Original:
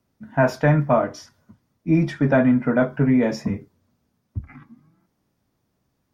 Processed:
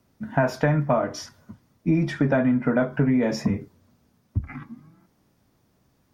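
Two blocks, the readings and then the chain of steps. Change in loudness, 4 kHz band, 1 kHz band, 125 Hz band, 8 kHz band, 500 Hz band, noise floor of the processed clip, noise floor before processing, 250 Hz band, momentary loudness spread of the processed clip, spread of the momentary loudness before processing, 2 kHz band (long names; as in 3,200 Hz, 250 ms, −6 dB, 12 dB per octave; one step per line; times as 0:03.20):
−3.5 dB, +1.5 dB, −3.0 dB, −2.5 dB, can't be measured, −3.5 dB, −66 dBFS, −73 dBFS, −3.0 dB, 12 LU, 18 LU, −3.0 dB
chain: downward compressor 4 to 1, threshold −26 dBFS, peak gain reduction 11.5 dB
level +6.5 dB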